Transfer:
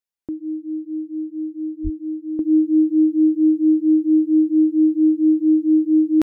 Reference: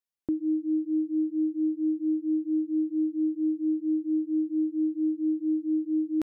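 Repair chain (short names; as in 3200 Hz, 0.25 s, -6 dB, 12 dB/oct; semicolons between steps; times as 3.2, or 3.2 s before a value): de-plosive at 1.83; gain correction -11.5 dB, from 2.39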